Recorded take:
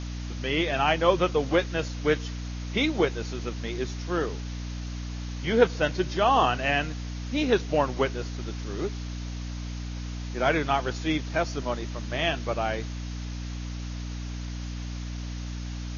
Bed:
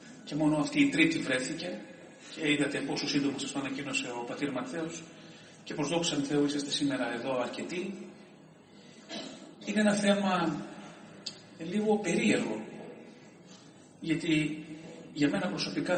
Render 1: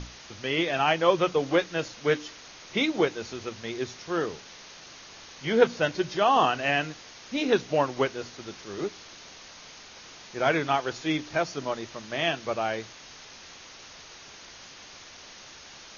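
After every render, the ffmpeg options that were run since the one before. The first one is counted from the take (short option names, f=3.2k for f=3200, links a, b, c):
-af "bandreject=f=60:t=h:w=6,bandreject=f=120:t=h:w=6,bandreject=f=180:t=h:w=6,bandreject=f=240:t=h:w=6,bandreject=f=300:t=h:w=6"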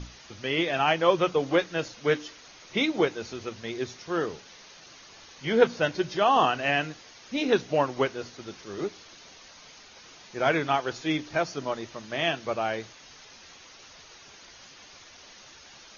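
-af "afftdn=nr=6:nf=-48"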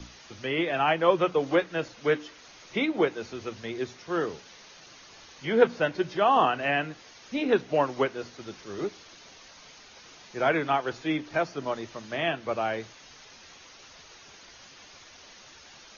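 -filter_complex "[0:a]acrossover=split=160|440|3100[a][b][c][d];[a]alimiter=level_in=17.5dB:limit=-24dB:level=0:latency=1:release=470,volume=-17.5dB[e];[d]acompressor=threshold=-50dB:ratio=6[f];[e][b][c][f]amix=inputs=4:normalize=0"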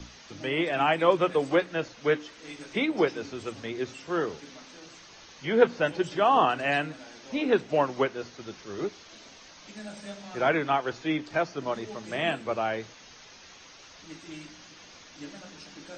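-filter_complex "[1:a]volume=-15.5dB[a];[0:a][a]amix=inputs=2:normalize=0"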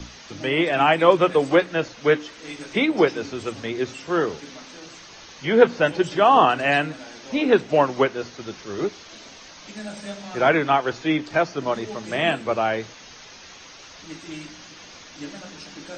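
-af "volume=6.5dB,alimiter=limit=-1dB:level=0:latency=1"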